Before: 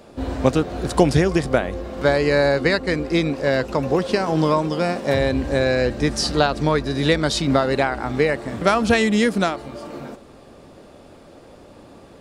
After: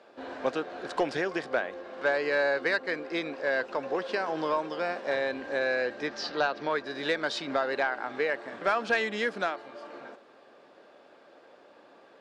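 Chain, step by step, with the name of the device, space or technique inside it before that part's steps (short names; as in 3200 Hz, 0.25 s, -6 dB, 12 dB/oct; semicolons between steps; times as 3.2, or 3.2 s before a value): intercom (BPF 450–4100 Hz; bell 1600 Hz +7 dB 0.21 oct; soft clip -8.5 dBFS, distortion -21 dB); 6.07–6.7 LPF 5900 Hz 24 dB/oct; gain -7 dB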